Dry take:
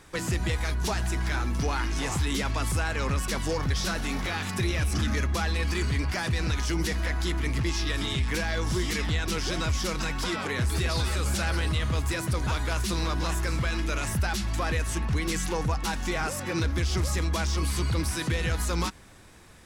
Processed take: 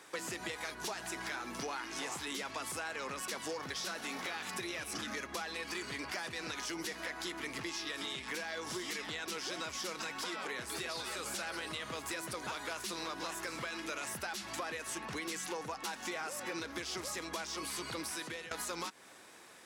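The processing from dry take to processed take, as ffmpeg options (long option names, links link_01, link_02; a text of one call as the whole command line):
ffmpeg -i in.wav -filter_complex "[0:a]asplit=2[link_01][link_02];[link_01]atrim=end=18.51,asetpts=PTS-STARTPTS,afade=type=out:start_time=18.06:duration=0.45:silence=0.11885[link_03];[link_02]atrim=start=18.51,asetpts=PTS-STARTPTS,afade=type=in:duration=0.004:curve=hsin:silence=0.11885[link_04];[link_03][link_04]concat=n=2:v=0:a=1,highpass=360,acompressor=threshold=-36dB:ratio=6,volume=-1dB" out.wav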